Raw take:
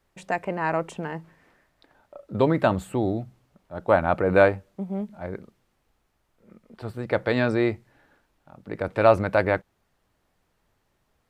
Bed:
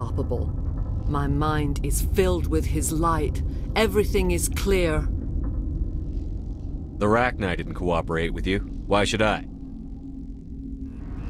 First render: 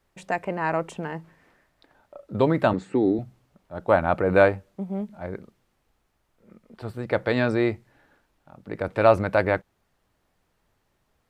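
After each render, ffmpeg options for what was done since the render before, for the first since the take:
-filter_complex "[0:a]asettb=1/sr,asplit=3[a][b][c];[a]atrim=end=2.734[d];[b]atrim=start=2.73:end=3.19,asetpts=PTS-STARTPTS,afade=t=in:d=0.004:c=qsin,afade=t=out:st=0.456:d=0.004:c=qsin,highpass=160,equalizer=f=280:t=q:w=4:g=8,equalizer=f=420:t=q:w=4:g=7,equalizer=f=640:t=q:w=4:g=-9,equalizer=f=1.1k:t=q:w=4:g=-5,equalizer=f=1.9k:t=q:w=4:g=5,equalizer=f=3.1k:t=q:w=4:g=-9,lowpass=f=6.2k:w=0.5412,lowpass=f=6.2k:w=1.3066[e];[c]atrim=start=3.186[f];[d][e]acrossfade=d=0.004:c1=hsin:c2=qsin[g];[g][f]acrossfade=d=0.004:c1=qsin:c2=hsin"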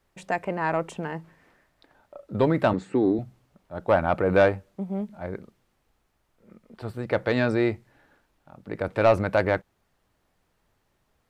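-af "asoftclip=type=tanh:threshold=-9dB"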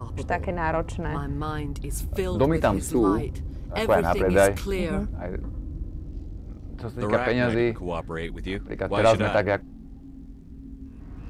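-filter_complex "[1:a]volume=-6.5dB[a];[0:a][a]amix=inputs=2:normalize=0"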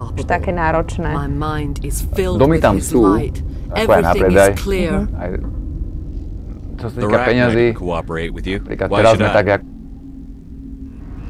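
-af "volume=9.5dB,alimiter=limit=-1dB:level=0:latency=1"

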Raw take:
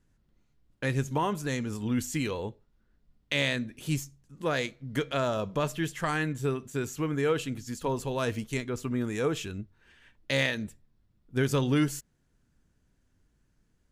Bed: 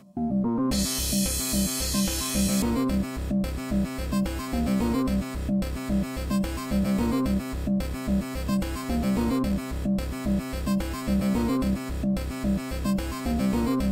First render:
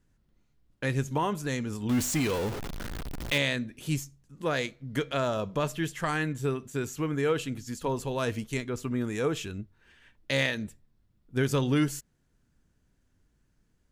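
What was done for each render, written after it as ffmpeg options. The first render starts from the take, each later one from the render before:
-filter_complex "[0:a]asettb=1/sr,asplit=3[a][b][c];[a]atrim=end=1.894[d];[b]atrim=start=1.89:end=3.38,asetpts=PTS-STARTPTS,afade=t=in:d=0.004:c=qsin,afade=t=out:st=1.486:d=0.004:c=qsin,aeval=exprs='val(0)+0.5*0.0335*sgn(val(0))':c=same[e];[c]atrim=start=3.376[f];[d][e]acrossfade=d=0.004:c1=hsin:c2=qsin[g];[g][f]acrossfade=d=0.004:c1=qsin:c2=hsin"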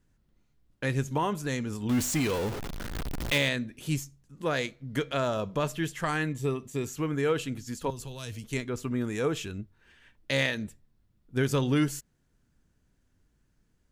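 -filter_complex "[0:a]asettb=1/sr,asplit=3[a][b][c];[a]atrim=end=2.954[d];[b]atrim=start=2.95:end=3.49,asetpts=PTS-STARTPTS,afade=t=in:d=0.004:c=qsin,afade=t=out:st=0.536:d=0.004:c=qsin,aeval=exprs='val(0)+0.5*0.015*sgn(val(0))':c=same[e];[c]atrim=start=3.486[f];[d][e]acrossfade=d=0.004:c1=hsin:c2=qsin[g];[g][f]acrossfade=d=0.004:c1=qsin:c2=hsin,asettb=1/sr,asplit=3[h][i][j];[h]atrim=end=6.294[k];[i]atrim=start=6.29:end=6.85,asetpts=PTS-STARTPTS,afade=t=in:d=0.004:c=qsin,afade=t=out:st=0.556:d=0.004:c=qsin,asuperstop=centerf=1500:order=4:qfactor=4.5[l];[j]atrim=start=6.846[m];[k][l]acrossfade=d=0.004:c1=hsin:c2=qsin[n];[n][m]acrossfade=d=0.004:c1=qsin:c2=hsin,asettb=1/sr,asplit=3[o][p][q];[o]atrim=end=7.904[r];[p]atrim=start=7.9:end=8.44,asetpts=PTS-STARTPTS,afade=t=in:d=0.004:c=qsin,afade=t=out:st=0.536:d=0.004:c=qsin,acrossover=split=130|3000[s][t][u];[t]acompressor=threshold=-47dB:ratio=3:attack=3.2:release=140:knee=2.83:detection=peak[v];[s][v][u]amix=inputs=3:normalize=0[w];[q]atrim=start=8.436[x];[r][w]acrossfade=d=0.004:c1=hsin:c2=qsin[y];[y][x]acrossfade=d=0.004:c1=qsin:c2=hsin"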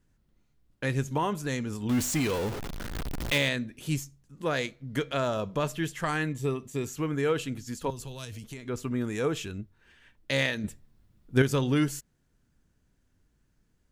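-filter_complex "[0:a]asettb=1/sr,asplit=3[a][b][c];[a]atrim=end=8.244[d];[b]atrim=start=8.24:end=8.68,asetpts=PTS-STARTPTS,afade=t=in:d=0.004:c=qsin,afade=t=out:st=0.436:d=0.004:c=qsin,acompressor=threshold=-36dB:ratio=12:attack=3.2:release=140:knee=1:detection=peak[e];[c]atrim=start=8.676[f];[d][e]acrossfade=d=0.004:c1=hsin:c2=qsin[g];[g][f]acrossfade=d=0.004:c1=qsin:c2=hsin,asplit=3[h][i][j];[h]atrim=end=10.642[k];[i]atrim=start=10.638:end=11.422,asetpts=PTS-STARTPTS,volume=6dB[l];[j]atrim=start=11.418[m];[k][l]acrossfade=d=0.004:c1=hsin:c2=hsin[n];[n][m]acrossfade=d=0.004:c1=hsin:c2=hsin"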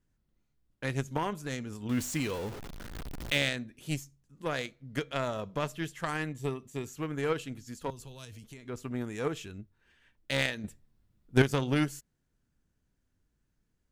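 -af "aeval=exprs='0.398*(cos(1*acos(clip(val(0)/0.398,-1,1)))-cos(1*PI/2))+0.0316*(cos(7*acos(clip(val(0)/0.398,-1,1)))-cos(7*PI/2))':c=same"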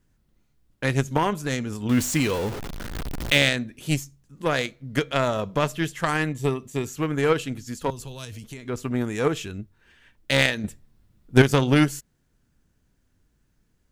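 -af "volume=9.5dB,alimiter=limit=-2dB:level=0:latency=1"

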